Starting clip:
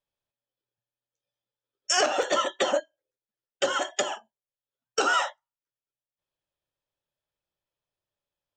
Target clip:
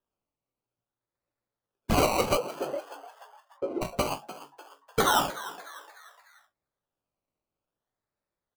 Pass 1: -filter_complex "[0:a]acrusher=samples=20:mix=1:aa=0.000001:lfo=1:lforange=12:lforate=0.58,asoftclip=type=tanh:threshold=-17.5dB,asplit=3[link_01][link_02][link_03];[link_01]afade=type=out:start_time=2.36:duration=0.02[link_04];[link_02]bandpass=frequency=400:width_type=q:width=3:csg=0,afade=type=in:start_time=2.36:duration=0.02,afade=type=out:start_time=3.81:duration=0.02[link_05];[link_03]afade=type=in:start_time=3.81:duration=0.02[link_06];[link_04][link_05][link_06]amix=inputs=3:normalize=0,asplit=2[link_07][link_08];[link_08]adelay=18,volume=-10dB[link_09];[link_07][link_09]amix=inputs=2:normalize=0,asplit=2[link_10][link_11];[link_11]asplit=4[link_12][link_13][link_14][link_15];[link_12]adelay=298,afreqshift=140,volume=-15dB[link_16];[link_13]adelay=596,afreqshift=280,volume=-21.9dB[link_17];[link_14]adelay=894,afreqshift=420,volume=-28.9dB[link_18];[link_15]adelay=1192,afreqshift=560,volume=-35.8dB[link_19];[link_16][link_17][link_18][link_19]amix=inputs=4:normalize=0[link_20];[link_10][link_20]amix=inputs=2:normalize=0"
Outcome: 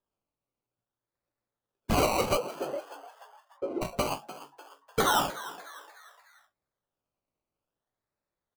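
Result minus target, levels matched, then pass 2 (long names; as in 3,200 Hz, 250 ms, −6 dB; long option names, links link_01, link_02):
soft clipping: distortion +17 dB
-filter_complex "[0:a]acrusher=samples=20:mix=1:aa=0.000001:lfo=1:lforange=12:lforate=0.58,asoftclip=type=tanh:threshold=-7.5dB,asplit=3[link_01][link_02][link_03];[link_01]afade=type=out:start_time=2.36:duration=0.02[link_04];[link_02]bandpass=frequency=400:width_type=q:width=3:csg=0,afade=type=in:start_time=2.36:duration=0.02,afade=type=out:start_time=3.81:duration=0.02[link_05];[link_03]afade=type=in:start_time=3.81:duration=0.02[link_06];[link_04][link_05][link_06]amix=inputs=3:normalize=0,asplit=2[link_07][link_08];[link_08]adelay=18,volume=-10dB[link_09];[link_07][link_09]amix=inputs=2:normalize=0,asplit=2[link_10][link_11];[link_11]asplit=4[link_12][link_13][link_14][link_15];[link_12]adelay=298,afreqshift=140,volume=-15dB[link_16];[link_13]adelay=596,afreqshift=280,volume=-21.9dB[link_17];[link_14]adelay=894,afreqshift=420,volume=-28.9dB[link_18];[link_15]adelay=1192,afreqshift=560,volume=-35.8dB[link_19];[link_16][link_17][link_18][link_19]amix=inputs=4:normalize=0[link_20];[link_10][link_20]amix=inputs=2:normalize=0"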